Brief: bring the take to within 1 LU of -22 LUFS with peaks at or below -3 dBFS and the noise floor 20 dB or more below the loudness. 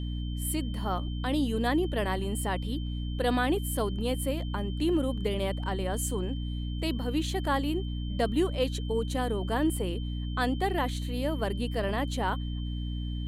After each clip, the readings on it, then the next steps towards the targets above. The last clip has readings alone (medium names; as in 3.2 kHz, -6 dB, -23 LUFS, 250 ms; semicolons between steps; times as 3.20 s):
hum 60 Hz; highest harmonic 300 Hz; hum level -31 dBFS; steady tone 3.1 kHz; tone level -47 dBFS; loudness -30.5 LUFS; peak level -14.0 dBFS; loudness target -22.0 LUFS
-> de-hum 60 Hz, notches 5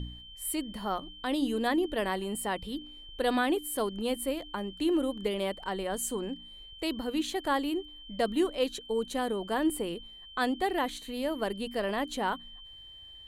hum not found; steady tone 3.1 kHz; tone level -47 dBFS
-> band-stop 3.1 kHz, Q 30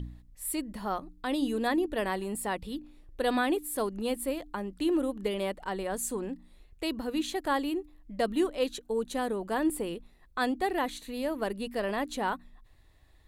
steady tone not found; loudness -32.0 LUFS; peak level -15.5 dBFS; loudness target -22.0 LUFS
-> trim +10 dB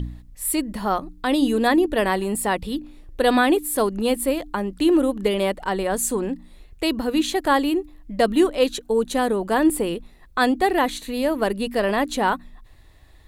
loudness -22.0 LUFS; peak level -5.5 dBFS; noise floor -49 dBFS